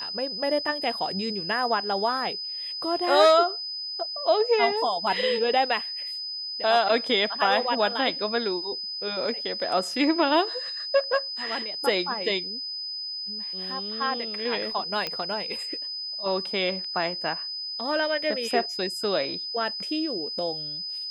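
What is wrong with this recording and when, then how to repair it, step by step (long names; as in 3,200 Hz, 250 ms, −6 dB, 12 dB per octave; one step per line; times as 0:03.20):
whistle 5,000 Hz −31 dBFS
0:15.07: click −14 dBFS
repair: click removal
notch filter 5,000 Hz, Q 30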